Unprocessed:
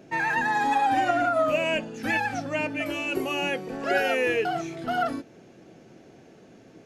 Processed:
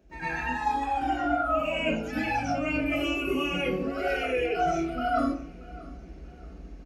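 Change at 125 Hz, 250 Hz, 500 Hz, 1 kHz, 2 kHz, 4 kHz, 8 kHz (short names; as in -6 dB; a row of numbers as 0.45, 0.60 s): +2.0, +2.0, -2.5, -2.5, -4.5, -2.0, -4.5 dB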